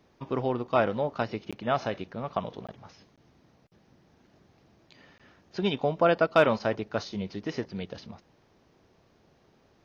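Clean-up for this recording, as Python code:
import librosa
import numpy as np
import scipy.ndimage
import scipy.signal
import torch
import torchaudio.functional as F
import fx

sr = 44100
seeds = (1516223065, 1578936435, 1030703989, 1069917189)

y = fx.fix_declip(x, sr, threshold_db=-10.0)
y = fx.fix_interpolate(y, sr, at_s=(1.51, 2.67, 3.16, 5.18), length_ms=16.0)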